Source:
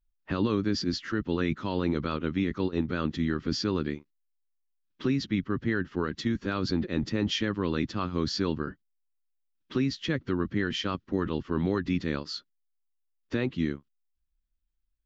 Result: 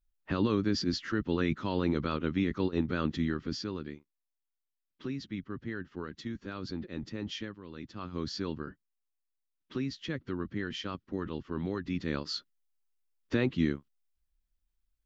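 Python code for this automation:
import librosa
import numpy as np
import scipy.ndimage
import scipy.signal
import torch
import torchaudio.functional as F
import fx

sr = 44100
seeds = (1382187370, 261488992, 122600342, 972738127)

y = fx.gain(x, sr, db=fx.line((3.17, -1.5), (3.8, -10.0), (7.44, -10.0), (7.61, -19.5), (8.15, -7.0), (11.87, -7.0), (12.3, 0.5)))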